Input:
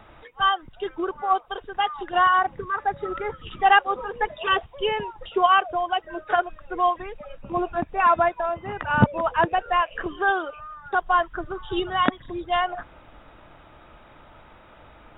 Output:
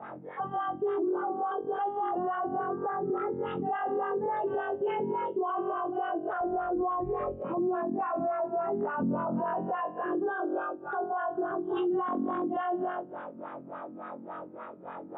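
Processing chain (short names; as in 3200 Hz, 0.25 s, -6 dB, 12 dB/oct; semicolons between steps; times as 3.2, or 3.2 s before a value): flutter echo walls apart 3.8 m, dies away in 0.96 s; vocal rider within 4 dB 2 s; LFO low-pass sine 3.5 Hz 240–1500 Hz; HPF 140 Hz 24 dB/oct, from 6.41 s 48 Hz, from 7.42 s 180 Hz; limiter -23 dBFS, peak gain reduction 28 dB; dynamic EQ 1700 Hz, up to -6 dB, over -45 dBFS, Q 1.3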